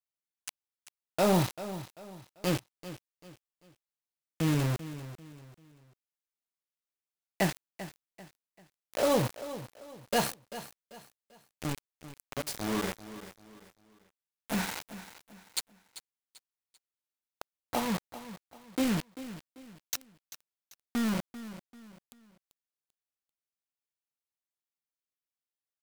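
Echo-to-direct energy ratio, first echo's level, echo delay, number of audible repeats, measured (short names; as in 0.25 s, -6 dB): -13.5 dB, -14.0 dB, 0.391 s, 3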